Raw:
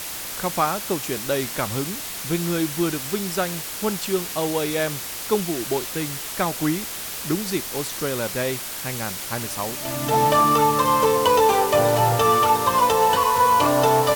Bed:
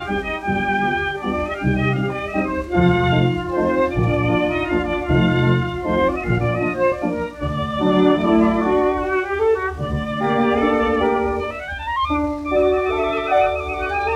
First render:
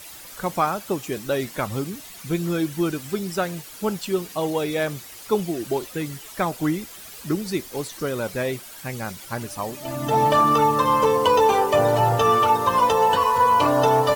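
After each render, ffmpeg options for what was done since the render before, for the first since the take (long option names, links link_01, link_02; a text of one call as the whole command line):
ffmpeg -i in.wav -af "afftdn=noise_reduction=12:noise_floor=-32" out.wav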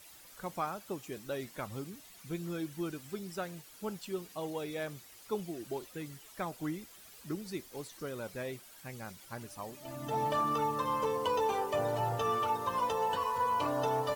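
ffmpeg -i in.wav -af "volume=-14dB" out.wav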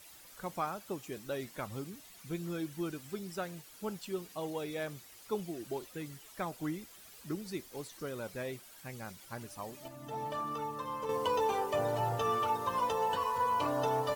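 ffmpeg -i in.wav -filter_complex "[0:a]asplit=3[link_01][link_02][link_03];[link_01]atrim=end=9.882[link_04];[link_02]atrim=start=9.878:end=11.092,asetpts=PTS-STARTPTS,volume=-6.5dB[link_05];[link_03]atrim=start=11.088[link_06];[link_04][link_05]acrossfade=duration=0.004:curve1=hsin:curve2=hsin[link_07];[link_07][link_06]acrossfade=duration=0.004:curve1=hsin:curve2=hsin" out.wav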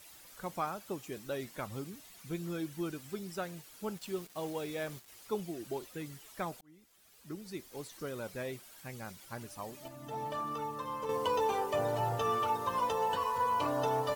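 ffmpeg -i in.wav -filter_complex "[0:a]asettb=1/sr,asplit=3[link_01][link_02][link_03];[link_01]atrim=end=3.974[link_04];[link_02]atrim=start=3.97:end=5.08,asetpts=PTS-STARTPTS,afade=type=in:duration=0.004:curve=qsin,afade=type=out:start_time=1.106:duration=0.004:curve=qsin,acrusher=bits=7:mix=0:aa=0.5[link_05];[link_03]atrim=start=5.076[link_06];[link_04][link_05]acrossfade=duration=0.004:curve1=hsin:curve2=qsin[link_07];[link_07][link_06]acrossfade=duration=0.004:curve1=qsin:curve2=hsin,asplit=2[link_08][link_09];[link_08]atrim=end=6.61,asetpts=PTS-STARTPTS,afade=type=out:start_time=6.606:duration=0.004:curve=hsin[link_10];[link_09]atrim=start=6.61,asetpts=PTS-STARTPTS,afade=type=in:duration=1.31[link_11];[link_10][link_11]concat=n=2:v=0:a=1" out.wav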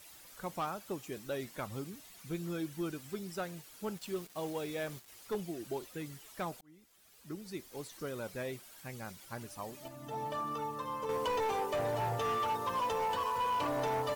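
ffmpeg -i in.wav -af "asoftclip=type=hard:threshold=-29.5dB" out.wav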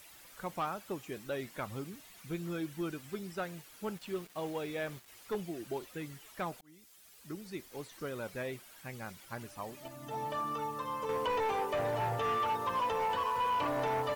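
ffmpeg -i in.wav -filter_complex "[0:a]highshelf=frequency=2500:gain=10,acrossover=split=2800[link_01][link_02];[link_02]acompressor=threshold=-55dB:ratio=4:attack=1:release=60[link_03];[link_01][link_03]amix=inputs=2:normalize=0" out.wav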